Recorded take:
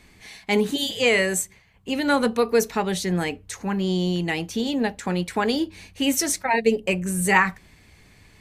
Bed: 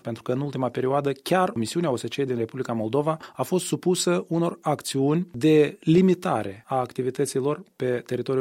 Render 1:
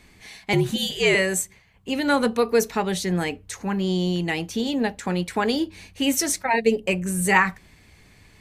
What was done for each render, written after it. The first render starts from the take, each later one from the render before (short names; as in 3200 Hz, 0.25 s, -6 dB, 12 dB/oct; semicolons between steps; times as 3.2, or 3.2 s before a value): 0.53–1.15 frequency shift -60 Hz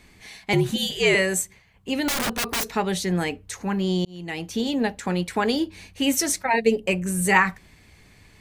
2.08–2.76 wrapped overs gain 20 dB; 4.05–4.58 fade in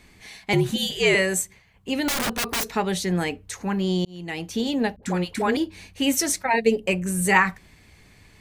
4.96–5.57 dispersion highs, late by 69 ms, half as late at 520 Hz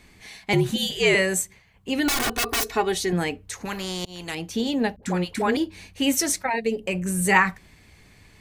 1.98–3.13 comb 2.7 ms; 3.65–4.35 spectral compressor 2:1; 6.49–6.95 compressor 1.5:1, threshold -28 dBFS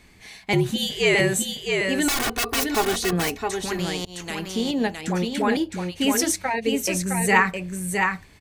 echo 0.663 s -4.5 dB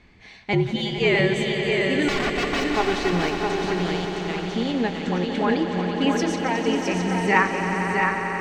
air absorption 170 m; on a send: swelling echo 90 ms, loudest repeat 5, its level -11.5 dB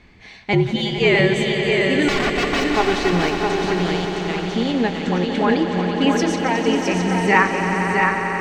gain +4 dB; limiter -2 dBFS, peak gain reduction 1 dB